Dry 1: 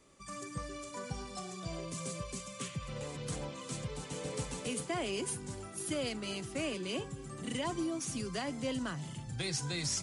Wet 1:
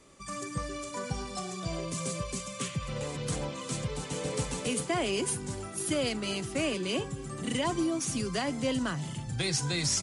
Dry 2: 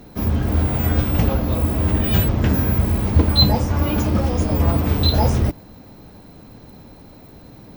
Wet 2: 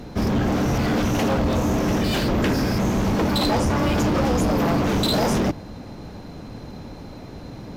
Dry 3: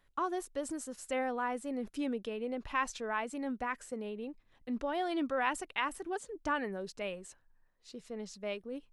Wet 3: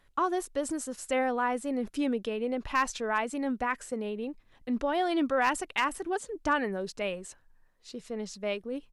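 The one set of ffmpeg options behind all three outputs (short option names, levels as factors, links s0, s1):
-af "afftfilt=real='re*lt(hypot(re,im),0.891)':imag='im*lt(hypot(re,im),0.891)':win_size=1024:overlap=0.75,asoftclip=type=hard:threshold=0.0708,aresample=32000,aresample=44100,volume=2"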